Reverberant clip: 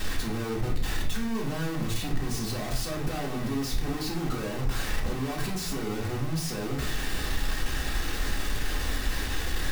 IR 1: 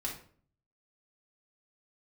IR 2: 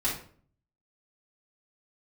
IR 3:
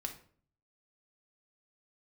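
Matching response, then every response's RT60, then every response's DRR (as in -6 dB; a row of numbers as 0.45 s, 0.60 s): 1; 0.50 s, 0.50 s, 0.50 s; -4.0 dB, -9.5 dB, 3.0 dB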